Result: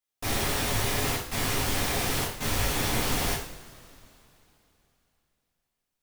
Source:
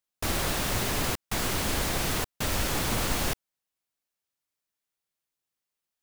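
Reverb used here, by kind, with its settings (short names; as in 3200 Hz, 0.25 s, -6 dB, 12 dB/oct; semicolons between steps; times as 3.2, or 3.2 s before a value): two-slope reverb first 0.55 s, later 3.3 s, from -22 dB, DRR -7.5 dB; gain -7 dB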